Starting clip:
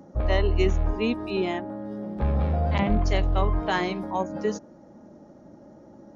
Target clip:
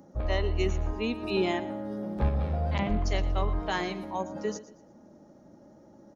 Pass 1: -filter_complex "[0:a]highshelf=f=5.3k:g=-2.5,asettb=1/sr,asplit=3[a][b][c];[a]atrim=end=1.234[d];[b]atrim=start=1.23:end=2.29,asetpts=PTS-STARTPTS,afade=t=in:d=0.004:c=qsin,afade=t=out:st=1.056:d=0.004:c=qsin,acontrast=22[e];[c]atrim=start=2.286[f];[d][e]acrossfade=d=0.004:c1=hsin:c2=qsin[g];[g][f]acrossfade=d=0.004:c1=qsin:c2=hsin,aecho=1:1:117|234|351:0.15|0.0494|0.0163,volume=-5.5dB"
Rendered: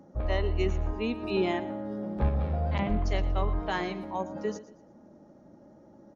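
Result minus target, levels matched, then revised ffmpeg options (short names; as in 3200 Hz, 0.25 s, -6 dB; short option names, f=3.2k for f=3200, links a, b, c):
8000 Hz band -6.5 dB
-filter_complex "[0:a]highshelf=f=5.3k:g=8.5,asettb=1/sr,asplit=3[a][b][c];[a]atrim=end=1.234[d];[b]atrim=start=1.23:end=2.29,asetpts=PTS-STARTPTS,afade=t=in:d=0.004:c=qsin,afade=t=out:st=1.056:d=0.004:c=qsin,acontrast=22[e];[c]atrim=start=2.286[f];[d][e]acrossfade=d=0.004:c1=hsin:c2=qsin[g];[g][f]acrossfade=d=0.004:c1=qsin:c2=hsin,aecho=1:1:117|234|351:0.15|0.0494|0.0163,volume=-5.5dB"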